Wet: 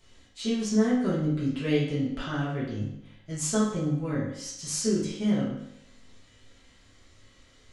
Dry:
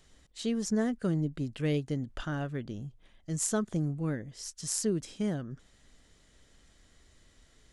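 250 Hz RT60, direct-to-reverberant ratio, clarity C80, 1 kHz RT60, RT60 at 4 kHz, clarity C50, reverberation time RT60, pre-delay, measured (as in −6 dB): 0.75 s, −9.5 dB, 6.0 dB, 0.75 s, 0.70 s, 2.5 dB, 0.75 s, 4 ms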